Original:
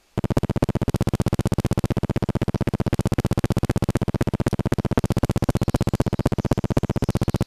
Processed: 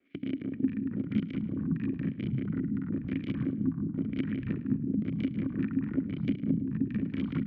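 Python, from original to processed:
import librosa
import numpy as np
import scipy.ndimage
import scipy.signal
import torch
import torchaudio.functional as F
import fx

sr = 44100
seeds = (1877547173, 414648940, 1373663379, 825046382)

p1 = fx.local_reverse(x, sr, ms=47.0)
p2 = scipy.signal.sosfilt(scipy.signal.butter(2, 47.0, 'highpass', fs=sr, output='sos'), p1)
p3 = fx.hum_notches(p2, sr, base_hz=60, count=5)
p4 = fx.leveller(p3, sr, passes=1)
p5 = fx.level_steps(p4, sr, step_db=16)
p6 = p4 + (p5 * 10.0 ** (-0.5 / 20.0))
p7 = fx.vowel_filter(p6, sr, vowel='i')
p8 = fx.filter_lfo_lowpass(p7, sr, shape='sine', hz=1.0, low_hz=220.0, high_hz=3400.0, q=1.4)
p9 = fx.echo_pitch(p8, sr, ms=349, semitones=-4, count=3, db_per_echo=-3.0)
p10 = p9 + fx.echo_feedback(p9, sr, ms=106, feedback_pct=35, wet_db=-16.0, dry=0)
p11 = fx.band_squash(p10, sr, depth_pct=40)
y = p11 * 10.0 ** (-6.5 / 20.0)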